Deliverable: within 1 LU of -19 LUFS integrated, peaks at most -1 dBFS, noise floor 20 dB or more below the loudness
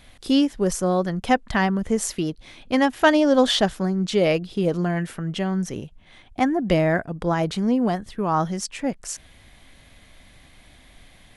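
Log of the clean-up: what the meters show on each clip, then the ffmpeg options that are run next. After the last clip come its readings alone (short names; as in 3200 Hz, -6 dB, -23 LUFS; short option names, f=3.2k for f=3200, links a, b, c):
loudness -22.5 LUFS; peak -5.5 dBFS; loudness target -19.0 LUFS
-> -af "volume=3.5dB"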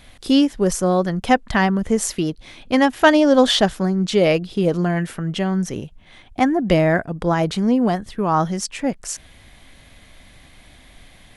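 loudness -19.0 LUFS; peak -2.0 dBFS; noise floor -48 dBFS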